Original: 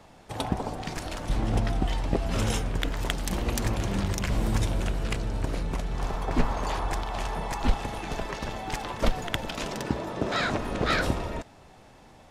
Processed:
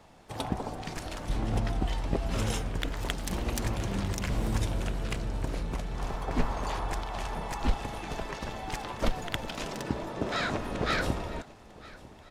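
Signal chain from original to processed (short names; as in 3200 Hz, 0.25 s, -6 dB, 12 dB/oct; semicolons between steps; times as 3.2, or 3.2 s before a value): feedback echo 0.949 s, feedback 55%, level -21 dB; harmoniser +5 st -15 dB; gain -3.5 dB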